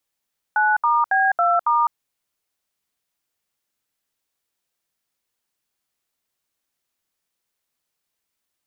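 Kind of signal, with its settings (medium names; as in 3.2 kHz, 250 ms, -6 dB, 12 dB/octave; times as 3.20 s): DTMF "9*B2*", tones 206 ms, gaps 70 ms, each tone -17.5 dBFS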